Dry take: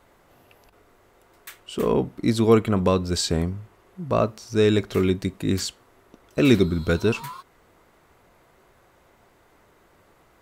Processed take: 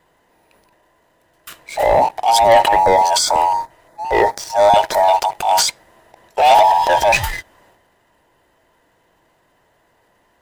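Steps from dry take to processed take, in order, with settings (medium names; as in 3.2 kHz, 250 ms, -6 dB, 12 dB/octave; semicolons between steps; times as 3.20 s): every band turned upside down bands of 1 kHz; waveshaping leveller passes 2; transient shaper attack -4 dB, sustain +8 dB; 2.84–5.31 s: LFO notch square 2.9 Hz 210–2800 Hz; trim +2 dB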